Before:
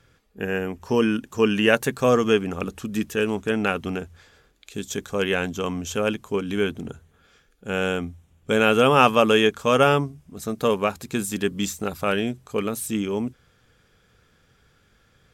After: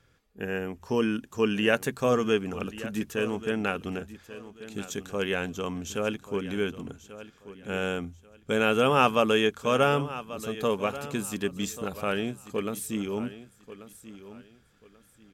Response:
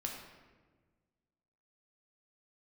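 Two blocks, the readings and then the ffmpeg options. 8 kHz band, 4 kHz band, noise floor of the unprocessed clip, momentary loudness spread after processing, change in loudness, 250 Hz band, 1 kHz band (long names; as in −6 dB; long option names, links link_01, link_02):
−5.5 dB, −5.5 dB, −62 dBFS, 21 LU, −5.5 dB, −5.5 dB, −5.5 dB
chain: -af "aecho=1:1:1137|2274|3411:0.178|0.0462|0.012,volume=-5.5dB"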